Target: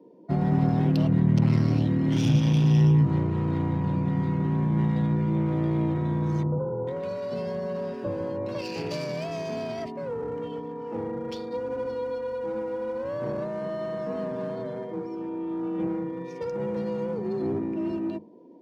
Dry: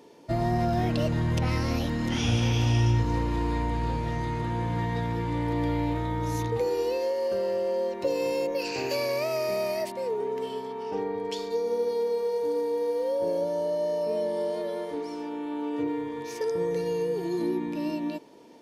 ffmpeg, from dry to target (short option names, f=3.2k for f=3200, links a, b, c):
-filter_complex "[0:a]adynamicsmooth=sensitivity=6:basefreq=2.3k,aeval=exprs='clip(val(0),-1,0.0251)':c=same,lowshelf=f=410:g=3.5,bandreject=f=60:t=h:w=6,bandreject=f=120:t=h:w=6,bandreject=f=180:t=h:w=6,asettb=1/sr,asplit=3[a][b][c];[a]atrim=end=6.434[d];[b]atrim=start=6.43:end=8.55,asetpts=PTS-STARTPTS,afade=t=in:d=0.004:c=qsin,afade=t=out:st=2.116:d=0.004:c=qsin,acrossover=split=1200[e][f];[f]adelay=440[g];[e][g]amix=inputs=2:normalize=0,atrim=end_sample=93492[h];[c]atrim=start=8.546[i];[d][h]acrossfade=d=0.004:c1=hsin:c2=qsin[j];[j][i]acrossfade=d=0.004:c1=qsin:c2=hsin,afftdn=nr=13:nf=-51,bass=f=250:g=13,treble=f=4k:g=10,afreqshift=34,highpass=f=110:w=0.5412,highpass=f=110:w=1.3066,volume=-4dB"